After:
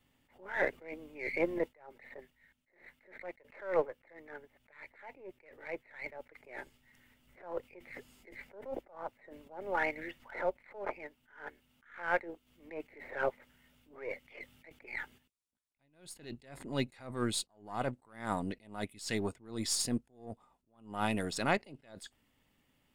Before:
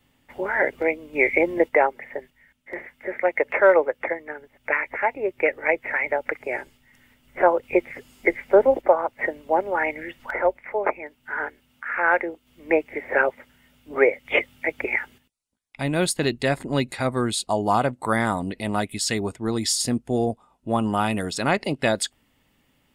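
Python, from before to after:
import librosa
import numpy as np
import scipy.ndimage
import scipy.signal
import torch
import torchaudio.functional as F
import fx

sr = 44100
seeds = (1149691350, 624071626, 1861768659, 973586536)

y = np.where(x < 0.0, 10.0 ** (-3.0 / 20.0) * x, x)
y = fx.attack_slew(y, sr, db_per_s=130.0)
y = F.gain(torch.from_numpy(y), -7.0).numpy()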